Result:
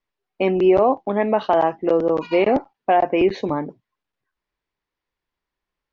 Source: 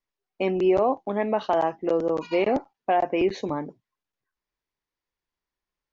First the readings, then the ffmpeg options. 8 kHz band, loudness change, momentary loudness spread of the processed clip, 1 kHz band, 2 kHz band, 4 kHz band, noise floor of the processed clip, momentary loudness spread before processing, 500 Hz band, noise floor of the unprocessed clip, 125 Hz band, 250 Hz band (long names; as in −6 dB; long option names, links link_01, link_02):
can't be measured, +5.5 dB, 9 LU, +5.5 dB, +5.0 dB, +4.0 dB, below −85 dBFS, 9 LU, +5.5 dB, below −85 dBFS, +5.5 dB, +5.5 dB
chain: -af "lowpass=4100,volume=5.5dB"